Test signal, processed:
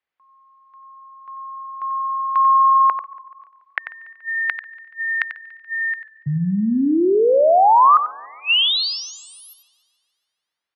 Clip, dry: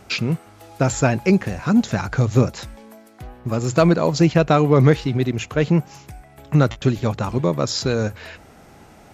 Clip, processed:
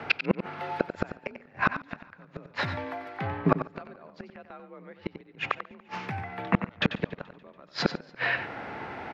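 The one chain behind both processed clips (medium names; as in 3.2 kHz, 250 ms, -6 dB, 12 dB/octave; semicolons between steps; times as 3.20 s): FFT filter 130 Hz 0 dB, 230 Hz +3 dB, 1.9 kHz +12 dB, 4.5 kHz -2 dB, 7.5 kHz -23 dB; frequency shift +45 Hz; inverted gate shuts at -9 dBFS, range -39 dB; on a send: delay 92 ms -10 dB; on the sum: modulated delay 143 ms, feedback 61%, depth 72 cents, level -23.5 dB; trim +1.5 dB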